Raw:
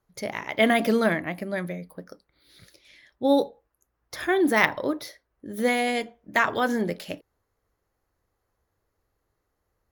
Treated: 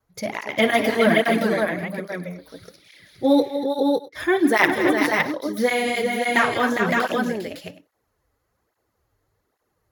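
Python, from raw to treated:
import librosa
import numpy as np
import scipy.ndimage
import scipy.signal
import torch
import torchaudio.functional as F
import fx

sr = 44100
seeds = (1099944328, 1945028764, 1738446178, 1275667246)

p1 = fx.vibrato(x, sr, rate_hz=1.0, depth_cents=13.0)
p2 = fx.double_bandpass(p1, sr, hz=820.0, octaves=2.5, at=(3.42, 4.15), fade=0.02)
p3 = p2 + fx.echo_multitap(p2, sr, ms=(56, 164, 239, 406, 562, 661), db=(-13.5, -16.0, -10.5, -6.0, -3.5, -19.5), dry=0)
p4 = fx.flanger_cancel(p3, sr, hz=1.2, depth_ms=6.0)
y = F.gain(torch.from_numpy(p4), 5.5).numpy()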